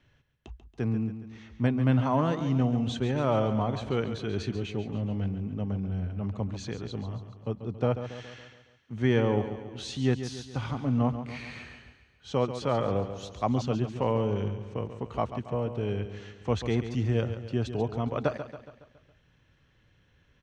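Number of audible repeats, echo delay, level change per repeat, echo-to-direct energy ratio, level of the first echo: 5, 139 ms, −5.5 dB, −9.0 dB, −10.5 dB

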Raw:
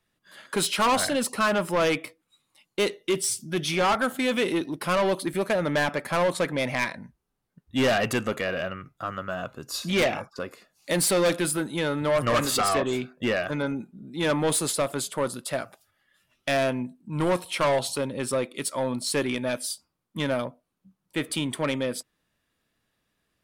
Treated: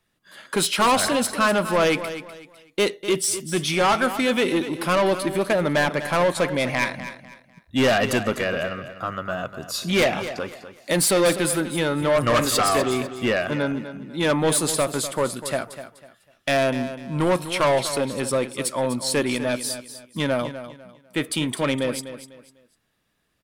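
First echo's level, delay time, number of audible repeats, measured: −12.0 dB, 249 ms, 3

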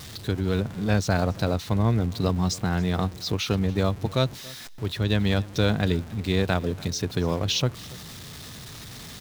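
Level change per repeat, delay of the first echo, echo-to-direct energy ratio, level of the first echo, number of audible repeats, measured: repeats not evenly spaced, 281 ms, −22.0 dB, −22.0 dB, 1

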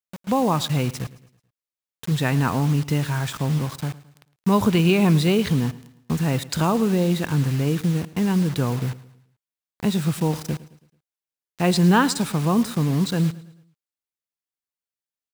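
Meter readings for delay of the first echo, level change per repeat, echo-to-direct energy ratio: 109 ms, −7.0 dB, −17.5 dB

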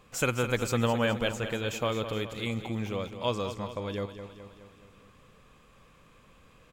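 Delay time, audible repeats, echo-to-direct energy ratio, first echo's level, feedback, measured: 210 ms, 5, −9.0 dB, −10.5 dB, 56%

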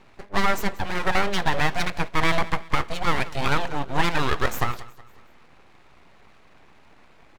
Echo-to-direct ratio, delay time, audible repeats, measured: −18.0 dB, 184 ms, 3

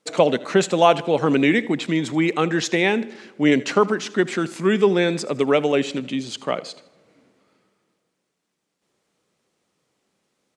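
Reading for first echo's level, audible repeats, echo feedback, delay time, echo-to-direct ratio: −20.0 dB, 2, 42%, 79 ms, −19.0 dB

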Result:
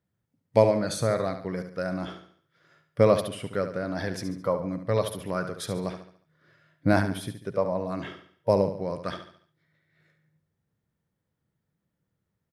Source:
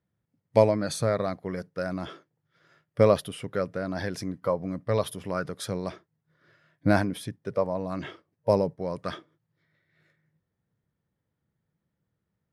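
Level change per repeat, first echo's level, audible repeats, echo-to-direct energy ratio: −7.5 dB, −9.5 dB, 4, −8.5 dB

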